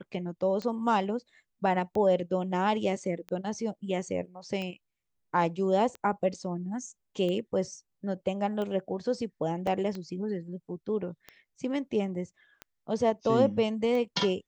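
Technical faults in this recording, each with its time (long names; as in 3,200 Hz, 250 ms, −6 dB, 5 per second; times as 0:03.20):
scratch tick 45 rpm −24 dBFS
0:09.67: drop-out 2.2 ms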